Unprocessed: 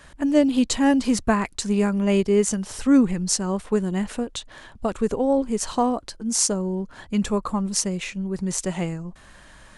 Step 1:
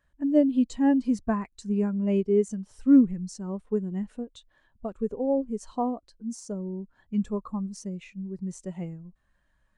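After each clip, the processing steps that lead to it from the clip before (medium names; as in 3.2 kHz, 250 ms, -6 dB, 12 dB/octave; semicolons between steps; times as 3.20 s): de-esser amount 40%; spectral contrast expander 1.5:1; trim -4 dB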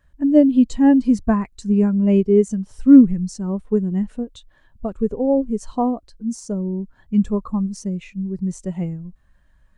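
bass shelf 170 Hz +9 dB; trim +6 dB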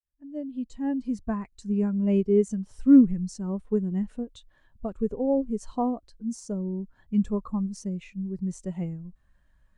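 fade-in on the opening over 2.36 s; trim -6.5 dB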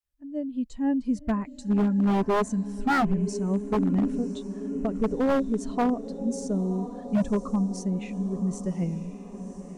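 echo that smears into a reverb 1030 ms, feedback 61%, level -13 dB; wavefolder -20 dBFS; trim +3 dB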